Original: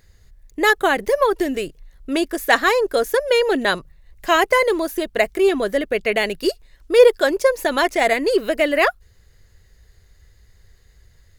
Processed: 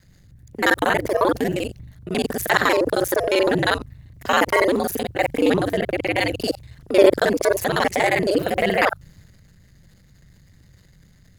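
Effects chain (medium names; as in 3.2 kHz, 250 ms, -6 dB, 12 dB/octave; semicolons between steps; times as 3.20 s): time reversed locally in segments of 39 ms; ring modulator 95 Hz; transient shaper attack -3 dB, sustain +6 dB; trim +2 dB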